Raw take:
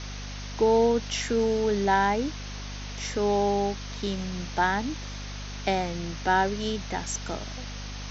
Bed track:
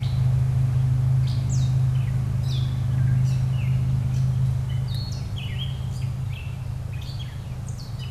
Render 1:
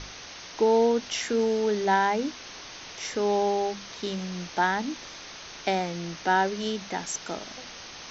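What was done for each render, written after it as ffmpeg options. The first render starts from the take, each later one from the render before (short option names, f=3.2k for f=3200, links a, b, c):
-af "bandreject=f=50:t=h:w=6,bandreject=f=100:t=h:w=6,bandreject=f=150:t=h:w=6,bandreject=f=200:t=h:w=6,bandreject=f=250:t=h:w=6"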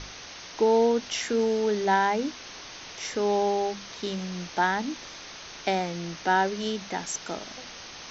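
-af anull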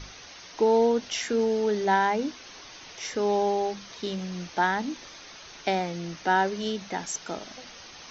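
-af "afftdn=nr=6:nf=-43"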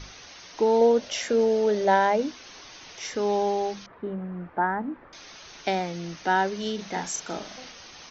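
-filter_complex "[0:a]asettb=1/sr,asplit=3[a][b][c];[a]atrim=end=0.814[d];[b]atrim=start=0.81:end=2.22,asetpts=PTS-STARTPTS,afade=t=in:d=0.004:c=qsin,afade=t=out:st=1.406:d=0.004:c=qsin,equalizer=f=570:t=o:w=0.37:g=13.5[e];[c]atrim=start=2.216[f];[d][e]acrossfade=d=0.004:c1=hsin:c2=qsin[g];[g][f]acrossfade=d=0.004:c1=qsin:c2=hsin,asettb=1/sr,asplit=3[h][i][j];[h]atrim=end=3.864[k];[i]atrim=start=3.86:end=5.13,asetpts=PTS-STARTPTS,afade=t=in:d=0.004:c=qsin,afade=t=out:st=1.266:d=0.004:c=qsin,lowpass=f=1.6k:w=0.5412,lowpass=f=1.6k:w=1.3066[l];[j]atrim=start=5.126[m];[k][l]acrossfade=d=0.004:c1=hsin:c2=qsin[n];[n][m]acrossfade=d=0.004:c1=qsin:c2=hsin,asplit=3[o][p][q];[o]afade=t=out:st=6.78:d=0.02[r];[p]asplit=2[s][t];[t]adelay=39,volume=-3.5dB[u];[s][u]amix=inputs=2:normalize=0,afade=t=in:st=6.78:d=0.02,afade=t=out:st=7.71:d=0.02[v];[q]afade=t=in:st=7.71:d=0.02[w];[r][v][w]amix=inputs=3:normalize=0"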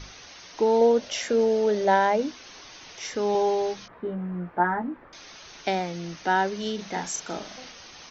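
-filter_complex "[0:a]asettb=1/sr,asplit=3[a][b][c];[a]atrim=end=3.334[d];[b]atrim=start=3.33:end=4.88,asetpts=PTS-STARTPTS,afade=t=in:d=0.004:c=qsin,afade=t=out:st=1.546:d=0.004:c=qsin,asplit=2[e][f];[f]adelay=17,volume=-5dB[g];[e][g]amix=inputs=2:normalize=0,atrim=end_sample=68355[h];[c]atrim=start=4.876[i];[d][h]acrossfade=d=0.004:c1=hsin:c2=qsin[j];[j][i]acrossfade=d=0.004:c1=qsin:c2=hsin"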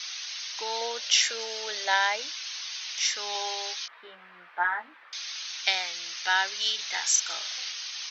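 -af "highpass=1.3k,equalizer=f=4.2k:t=o:w=2.1:g=12"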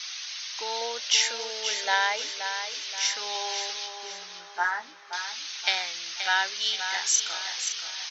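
-af "aecho=1:1:527|1054|1581|2108|2635:0.376|0.154|0.0632|0.0259|0.0106"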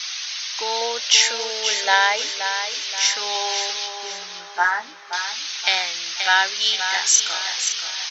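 -af "volume=7.5dB,alimiter=limit=-2dB:level=0:latency=1"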